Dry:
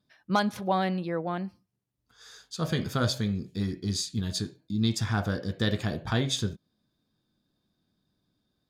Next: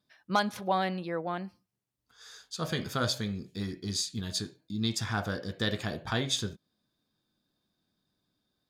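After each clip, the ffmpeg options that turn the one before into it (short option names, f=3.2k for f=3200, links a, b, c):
-af "lowshelf=f=350:g=-7"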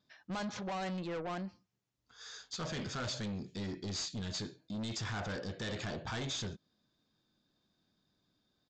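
-af "alimiter=limit=-22dB:level=0:latency=1:release=27,aresample=16000,asoftclip=type=tanh:threshold=-37dB,aresample=44100,volume=1.5dB"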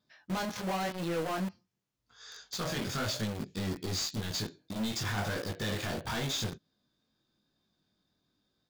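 -filter_complex "[0:a]flanger=delay=18:depth=4.5:speed=0.92,asplit=2[a][b];[b]acrusher=bits=6:mix=0:aa=0.000001,volume=-3dB[c];[a][c]amix=inputs=2:normalize=0,volume=3dB"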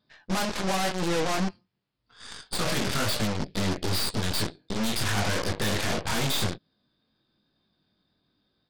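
-af "aresample=11025,aresample=44100,aeval=exprs='0.0562*(cos(1*acos(clip(val(0)/0.0562,-1,1)))-cos(1*PI/2))+0.02*(cos(8*acos(clip(val(0)/0.0562,-1,1)))-cos(8*PI/2))':c=same,volume=5dB"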